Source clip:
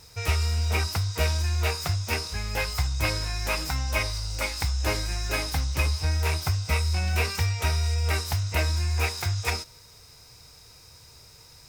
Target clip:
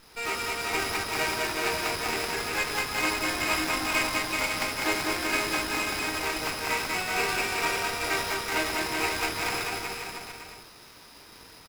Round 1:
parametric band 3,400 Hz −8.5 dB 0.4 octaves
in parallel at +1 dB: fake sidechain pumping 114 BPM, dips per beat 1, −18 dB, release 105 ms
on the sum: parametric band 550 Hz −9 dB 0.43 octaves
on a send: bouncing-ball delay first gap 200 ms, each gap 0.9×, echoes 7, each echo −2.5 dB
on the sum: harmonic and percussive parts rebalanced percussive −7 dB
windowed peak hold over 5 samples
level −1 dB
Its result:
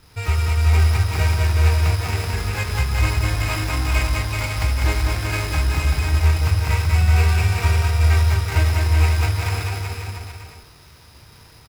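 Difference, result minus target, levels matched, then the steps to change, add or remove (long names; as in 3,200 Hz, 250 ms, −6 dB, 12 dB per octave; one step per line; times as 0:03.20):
250 Hz band −6.0 dB
add after the parallel path: Chebyshev high-pass filter 290 Hz, order 3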